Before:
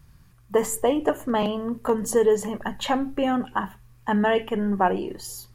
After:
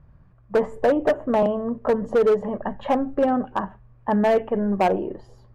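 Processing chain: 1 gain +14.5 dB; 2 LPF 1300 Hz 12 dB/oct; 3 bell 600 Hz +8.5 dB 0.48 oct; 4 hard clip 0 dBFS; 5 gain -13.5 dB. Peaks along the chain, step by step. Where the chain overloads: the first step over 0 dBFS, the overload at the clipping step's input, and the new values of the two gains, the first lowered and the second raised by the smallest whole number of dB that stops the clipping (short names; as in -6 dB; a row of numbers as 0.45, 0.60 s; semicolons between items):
+7.0, +6.0, +10.0, 0.0, -13.5 dBFS; step 1, 10.0 dB; step 1 +4.5 dB, step 5 -3.5 dB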